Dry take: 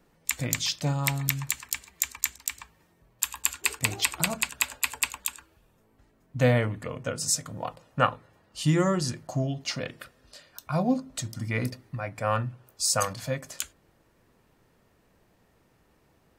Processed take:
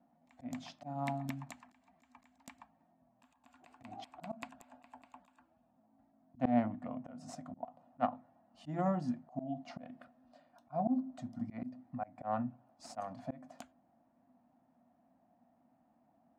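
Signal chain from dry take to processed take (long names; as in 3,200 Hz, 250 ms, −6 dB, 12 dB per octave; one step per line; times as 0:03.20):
harmonic generator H 6 −25 dB, 7 −22 dB, 8 −35 dB, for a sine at −2 dBFS
pair of resonant band-passes 420 Hz, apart 1.5 octaves
volume swells 191 ms
level +11.5 dB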